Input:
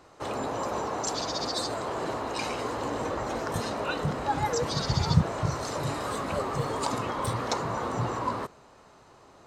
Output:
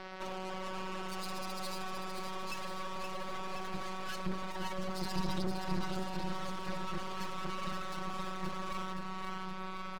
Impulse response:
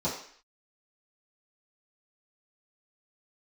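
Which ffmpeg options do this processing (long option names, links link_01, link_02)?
-filter_complex "[0:a]lowpass=frequency=3700:width=0.5412,lowpass=frequency=3700:width=1.3066,highshelf=frequency=2400:gain=8,bandreject=frequency=46.66:width_type=h:width=4,bandreject=frequency=93.32:width_type=h:width=4,bandreject=frequency=139.98:width_type=h:width=4,bandreject=frequency=186.64:width_type=h:width=4,bandreject=frequency=233.3:width_type=h:width=4,bandreject=frequency=279.96:width_type=h:width=4,afftfilt=real='hypot(re,im)*cos(PI*b)':imag='0':win_size=1024:overlap=0.75,acompressor=threshold=-41dB:ratio=3,aeval=exprs='clip(val(0),-1,0.0075)':channel_layout=same,asubboost=boost=2:cutoff=190,atempo=0.87,aeval=exprs='max(val(0),0)':channel_layout=same,asplit=2[link_01][link_02];[link_02]aecho=0:1:568|1136|1704|2272|2840|3408|3976:0.531|0.297|0.166|0.0932|0.0522|0.0292|0.0164[link_03];[link_01][link_03]amix=inputs=2:normalize=0,asetrate=48000,aresample=44100,volume=12.5dB"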